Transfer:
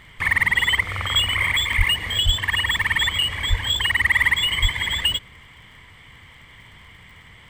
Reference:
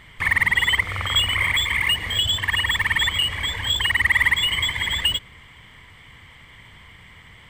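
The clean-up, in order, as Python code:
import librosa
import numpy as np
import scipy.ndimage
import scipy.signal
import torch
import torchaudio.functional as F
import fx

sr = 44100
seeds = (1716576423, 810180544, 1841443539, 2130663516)

y = fx.fix_declick_ar(x, sr, threshold=6.5)
y = fx.fix_deplosive(y, sr, at_s=(1.77, 2.25, 3.49, 4.61))
y = fx.fix_interpolate(y, sr, at_s=(0.59, 1.73, 2.77), length_ms=2.4)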